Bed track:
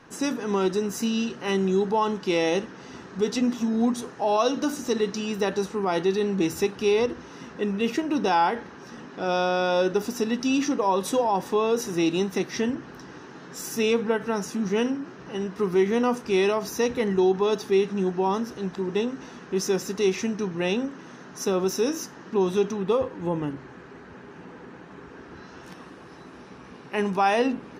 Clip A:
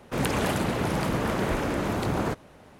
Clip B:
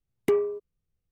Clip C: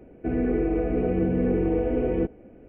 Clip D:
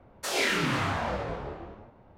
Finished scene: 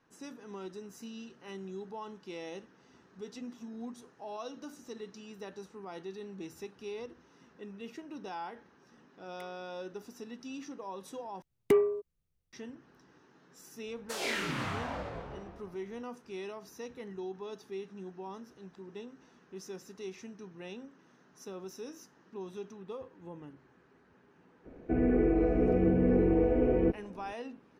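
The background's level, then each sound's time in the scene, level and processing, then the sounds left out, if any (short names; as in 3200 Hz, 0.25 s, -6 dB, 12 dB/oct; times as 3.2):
bed track -19.5 dB
9.12 add B -16.5 dB + HPF 1400 Hz
11.42 replace with B -1.5 dB
13.86 add D -7.5 dB
24.65 add C -2 dB + tone controls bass -1 dB, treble -12 dB
not used: A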